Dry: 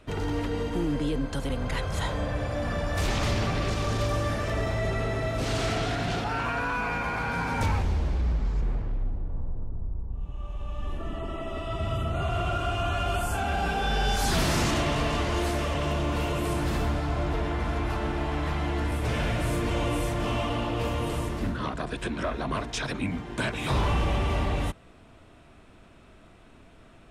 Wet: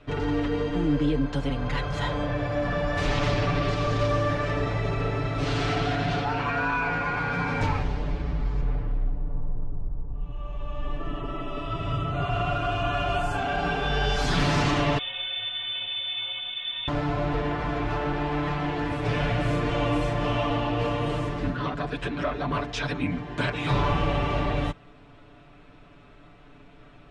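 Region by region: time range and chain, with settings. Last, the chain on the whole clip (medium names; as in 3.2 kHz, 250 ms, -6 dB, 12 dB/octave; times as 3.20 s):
14.98–16.88 s: frequency inversion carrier 3.6 kHz + inharmonic resonator 110 Hz, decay 0.28 s, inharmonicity 0.03
whole clip: low-pass 4.4 kHz 12 dB/octave; comb 6.9 ms, depth 84%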